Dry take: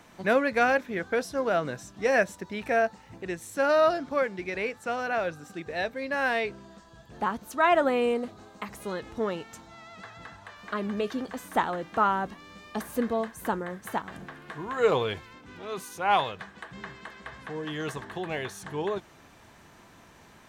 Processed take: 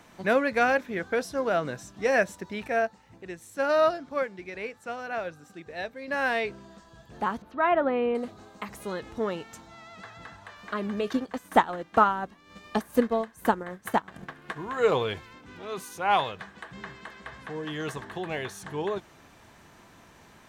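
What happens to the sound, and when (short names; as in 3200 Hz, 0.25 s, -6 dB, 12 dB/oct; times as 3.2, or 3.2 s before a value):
2.67–6.08 upward expander, over -31 dBFS
7.42–8.15 air absorption 390 m
11.07–14.57 transient shaper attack +7 dB, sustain -9 dB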